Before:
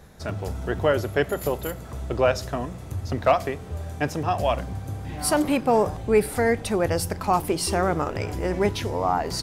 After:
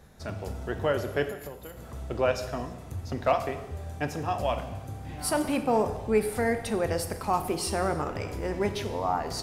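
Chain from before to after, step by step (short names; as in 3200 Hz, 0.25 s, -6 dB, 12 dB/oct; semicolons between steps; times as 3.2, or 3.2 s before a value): 1.25–1.77 compressor 6:1, threshold -33 dBFS, peak gain reduction 12.5 dB; non-linear reverb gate 0.36 s falling, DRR 8 dB; gain -5.5 dB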